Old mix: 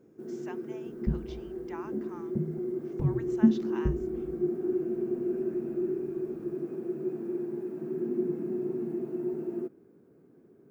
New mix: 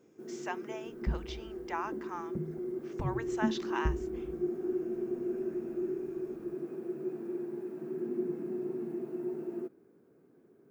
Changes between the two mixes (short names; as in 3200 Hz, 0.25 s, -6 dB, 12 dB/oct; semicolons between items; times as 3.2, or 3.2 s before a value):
speech +8.5 dB; first sound: add low shelf 370 Hz -7.5 dB; second sound: send -9.0 dB